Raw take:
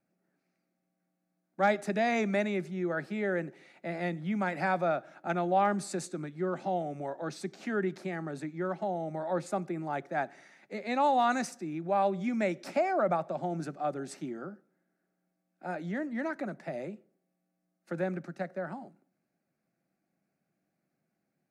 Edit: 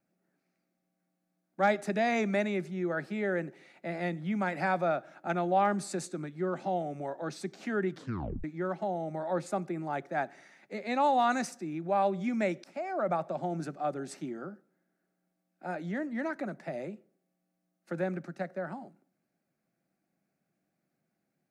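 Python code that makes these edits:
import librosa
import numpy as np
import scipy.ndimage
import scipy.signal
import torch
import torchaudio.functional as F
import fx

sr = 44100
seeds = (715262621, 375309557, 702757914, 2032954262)

y = fx.edit(x, sr, fx.tape_stop(start_s=7.91, length_s=0.53),
    fx.fade_in_from(start_s=12.64, length_s=0.58, floor_db=-19.5), tone=tone)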